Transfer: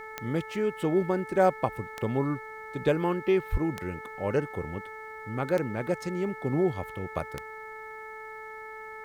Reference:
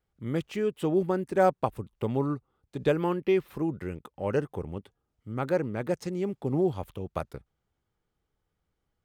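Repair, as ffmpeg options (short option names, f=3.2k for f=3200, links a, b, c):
-filter_complex "[0:a]adeclick=t=4,bandreject=f=436.6:t=h:w=4,bandreject=f=873.2:t=h:w=4,bandreject=f=1.3098k:t=h:w=4,bandreject=f=1.7464k:t=h:w=4,bandreject=f=2.183k:t=h:w=4,asplit=3[a][b][c];[a]afade=t=out:st=3.51:d=0.02[d];[b]highpass=f=140:w=0.5412,highpass=f=140:w=1.3066,afade=t=in:st=3.51:d=0.02,afade=t=out:st=3.63:d=0.02[e];[c]afade=t=in:st=3.63:d=0.02[f];[d][e][f]amix=inputs=3:normalize=0,agate=range=-21dB:threshold=-34dB"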